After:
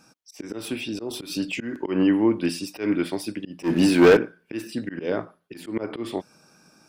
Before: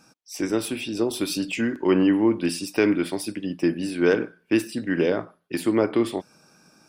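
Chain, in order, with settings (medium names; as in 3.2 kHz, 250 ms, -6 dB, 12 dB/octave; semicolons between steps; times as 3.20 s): dynamic bell 9.6 kHz, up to -5 dB, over -47 dBFS, Q 0.91; 3.63–4.17 s: waveshaping leveller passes 3; slow attack 150 ms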